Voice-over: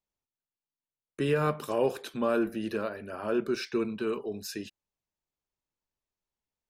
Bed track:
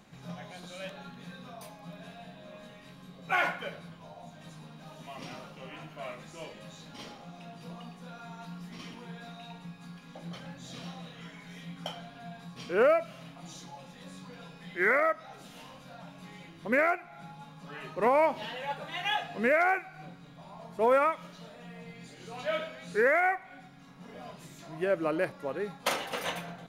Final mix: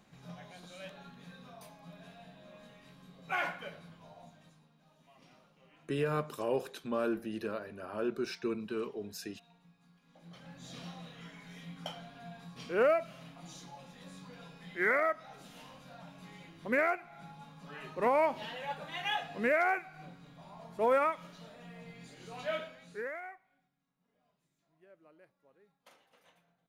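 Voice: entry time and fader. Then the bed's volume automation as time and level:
4.70 s, −5.5 dB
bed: 0:04.23 −6 dB
0:04.69 −18.5 dB
0:09.99 −18.5 dB
0:10.64 −3.5 dB
0:22.52 −3.5 dB
0:23.86 −32 dB

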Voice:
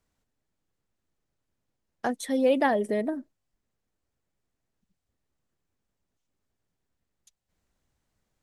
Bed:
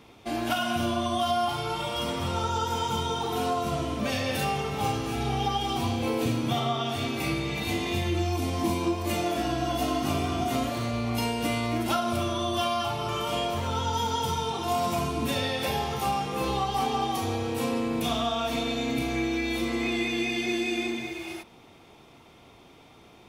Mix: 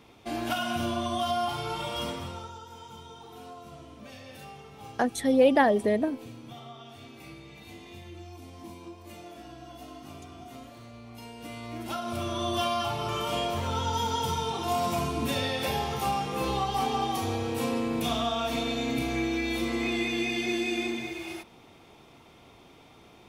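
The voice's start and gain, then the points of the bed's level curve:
2.95 s, +2.5 dB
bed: 0:02.05 −2.5 dB
0:02.62 −17.5 dB
0:11.16 −17.5 dB
0:12.48 −1 dB

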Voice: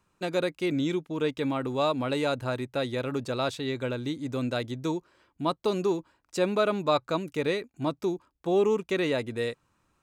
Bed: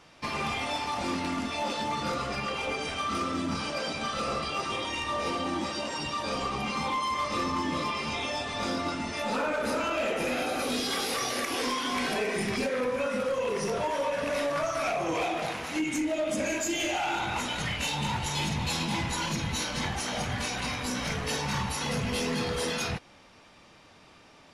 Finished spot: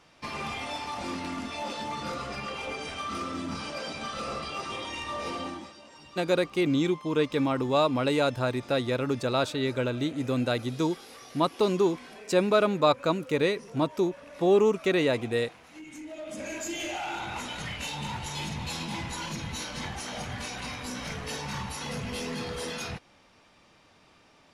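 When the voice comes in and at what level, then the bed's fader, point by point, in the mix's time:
5.95 s, +2.5 dB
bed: 0:05.45 −3.5 dB
0:05.77 −17.5 dB
0:15.71 −17.5 dB
0:16.66 −4.5 dB

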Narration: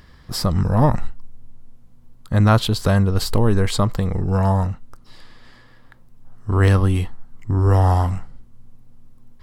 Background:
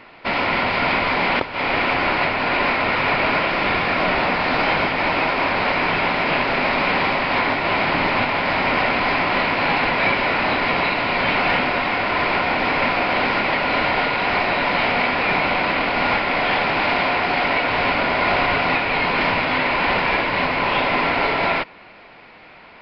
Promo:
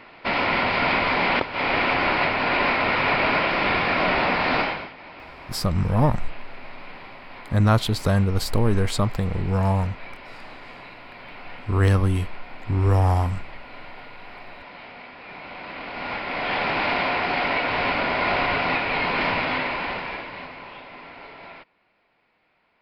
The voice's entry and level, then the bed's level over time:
5.20 s, −3.5 dB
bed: 0:04.59 −2 dB
0:04.96 −22.5 dB
0:15.19 −22.5 dB
0:16.67 −4 dB
0:19.48 −4 dB
0:20.84 −22.5 dB

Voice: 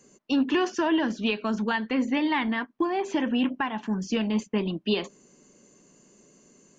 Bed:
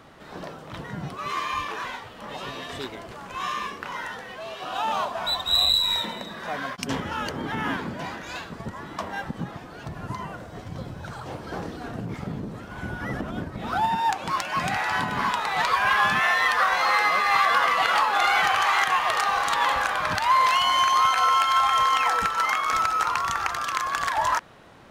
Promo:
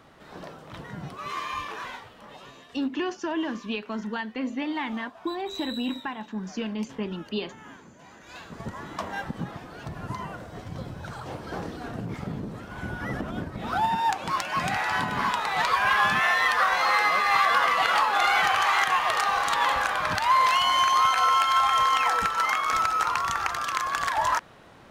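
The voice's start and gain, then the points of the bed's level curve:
2.45 s, −5.0 dB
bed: 0:01.97 −4 dB
0:02.86 −18.5 dB
0:08.01 −18.5 dB
0:08.63 −1 dB

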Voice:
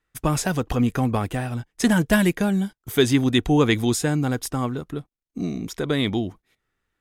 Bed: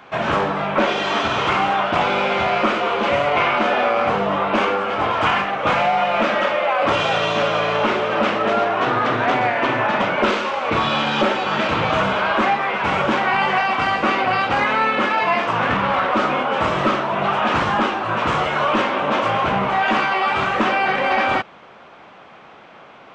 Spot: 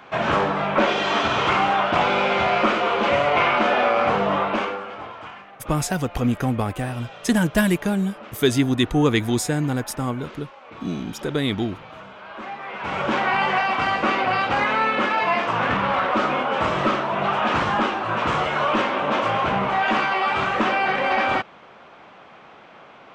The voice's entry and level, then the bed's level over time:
5.45 s, −0.5 dB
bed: 0:04.38 −1 dB
0:05.35 −22 dB
0:12.17 −22 dB
0:13.17 −2.5 dB

